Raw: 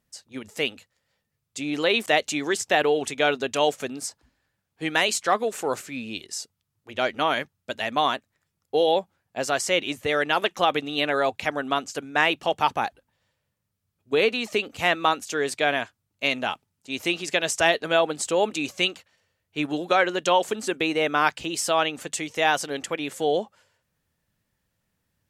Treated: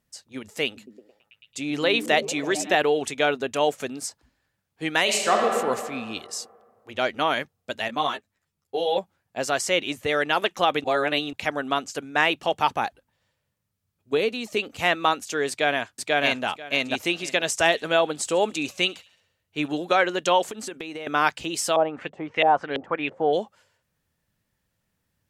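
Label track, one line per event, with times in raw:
0.650000	2.750000	repeats whose band climbs or falls 110 ms, band-pass from 160 Hz, each repeat 0.7 oct, level -4 dB
3.250000	3.760000	peaking EQ 4.8 kHz -5.5 dB 1.6 oct
5.020000	5.470000	reverb throw, RT60 2 s, DRR 0 dB
7.880000	8.980000	three-phase chorus
10.840000	11.330000	reverse
14.170000	14.570000	peaking EQ 1.6 kHz -7 dB 2.9 oct
15.490000	16.460000	echo throw 490 ms, feedback 15%, level 0 dB
17.500000	19.680000	feedback echo behind a high-pass 69 ms, feedback 49%, high-pass 3.5 kHz, level -18 dB
20.430000	21.070000	compression 16:1, threshold -30 dBFS
21.760000	23.330000	LFO low-pass saw up 3 Hz 500–3100 Hz

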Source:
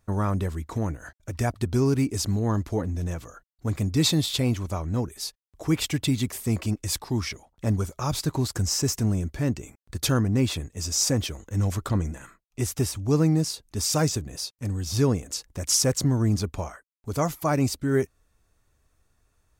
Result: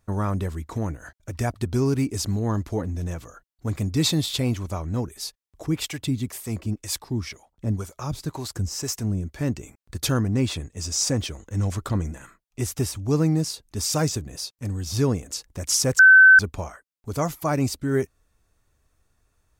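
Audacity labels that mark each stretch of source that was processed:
5.660000	9.410000	harmonic tremolo 2 Hz, crossover 460 Hz
10.340000	11.780000	peaking EQ 13 kHz -12 dB 0.22 oct
15.990000	16.390000	bleep 1.53 kHz -7.5 dBFS

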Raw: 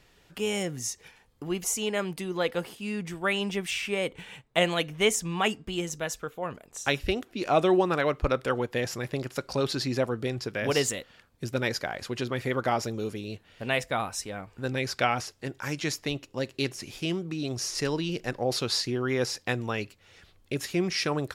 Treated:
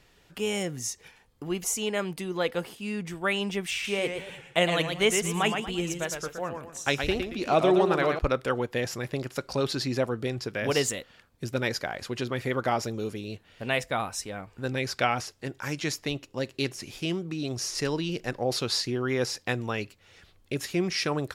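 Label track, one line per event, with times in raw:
3.720000	8.190000	modulated delay 115 ms, feedback 36%, depth 149 cents, level -6 dB

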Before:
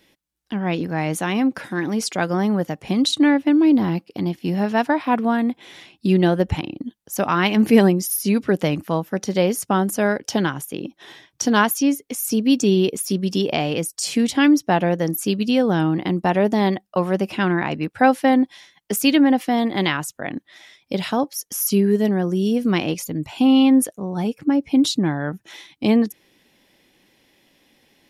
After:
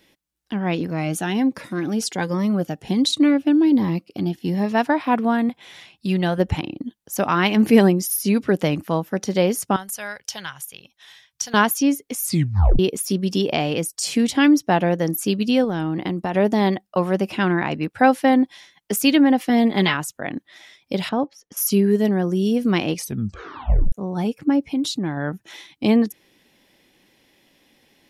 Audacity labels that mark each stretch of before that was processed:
0.900000	4.750000	Shepard-style phaser rising 1.3 Hz
5.490000	6.380000	peaking EQ 310 Hz -10 dB 1.1 oct
9.760000	11.540000	amplifier tone stack bass-middle-treble 10-0-10
12.230000	12.230000	tape stop 0.56 s
15.640000	16.340000	compression, threshold -20 dBFS
19.490000	19.940000	comb 4.7 ms
21.090000	21.570000	tape spacing loss at 10 kHz 27 dB
22.950000	22.950000	tape stop 0.97 s
24.640000	25.170000	compression 2:1, threshold -24 dBFS

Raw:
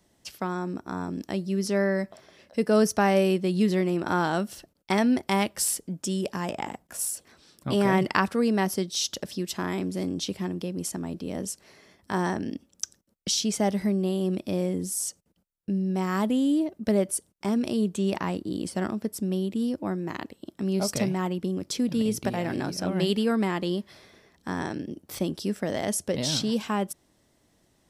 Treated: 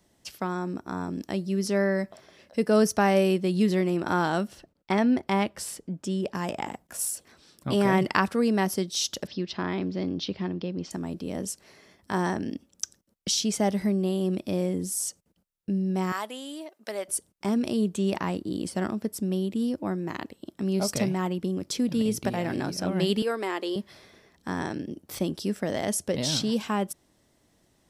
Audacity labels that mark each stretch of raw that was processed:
4.470000	6.350000	low-pass 2.6 kHz 6 dB/octave
9.270000	10.910000	steep low-pass 5 kHz
16.120000	17.080000	high-pass 770 Hz
23.220000	23.760000	Chebyshev high-pass 350 Hz, order 3

